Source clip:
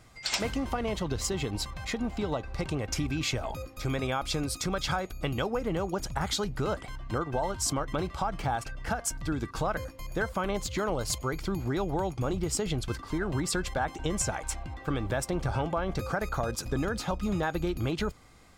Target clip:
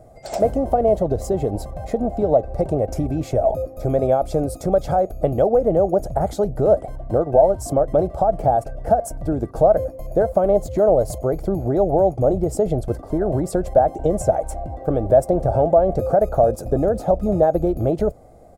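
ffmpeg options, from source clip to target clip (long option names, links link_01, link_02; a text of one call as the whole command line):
ffmpeg -i in.wav -af "firequalizer=gain_entry='entry(280,0);entry(650,14);entry(980,-11);entry(2800,-23);entry(10000,-7)':delay=0.05:min_phase=1,volume=8dB" out.wav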